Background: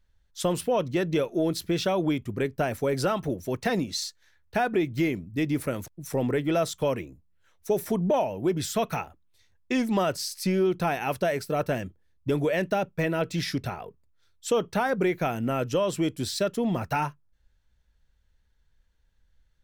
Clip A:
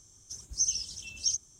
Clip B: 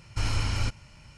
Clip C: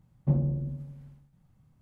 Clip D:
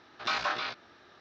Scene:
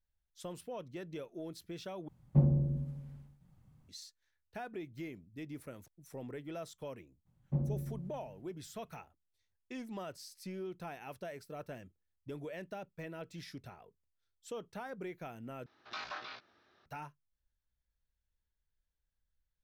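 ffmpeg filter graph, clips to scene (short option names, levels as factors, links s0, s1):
-filter_complex "[3:a]asplit=2[s0][s1];[0:a]volume=0.119,asplit=3[s2][s3][s4];[s2]atrim=end=2.084[s5];[s0]atrim=end=1.81,asetpts=PTS-STARTPTS,volume=0.891[s6];[s3]atrim=start=3.886:end=15.664[s7];[4:a]atrim=end=1.2,asetpts=PTS-STARTPTS,volume=0.237[s8];[s4]atrim=start=16.856[s9];[s1]atrim=end=1.81,asetpts=PTS-STARTPTS,volume=0.376,afade=t=in:d=0.02,afade=t=out:st=1.79:d=0.02,adelay=7250[s10];[s5][s6]acrossfade=d=0.004:c1=hsin:c2=hsin[s11];[s11][s7]acrossfade=d=0.004:c1=hsin:c2=hsin[s12];[s12][s8]acrossfade=d=0.004:c1=hsin:c2=hsin[s13];[s13][s9]acrossfade=d=0.004:c1=hsin:c2=hsin[s14];[s14][s10]amix=inputs=2:normalize=0"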